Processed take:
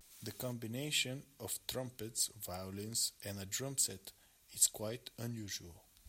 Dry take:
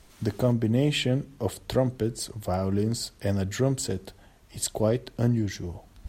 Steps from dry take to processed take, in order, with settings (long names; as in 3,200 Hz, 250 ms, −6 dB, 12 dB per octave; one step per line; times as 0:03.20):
first-order pre-emphasis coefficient 0.9
pitch vibrato 0.33 Hz 25 cents
hollow resonant body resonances 2,400/3,800 Hz, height 8 dB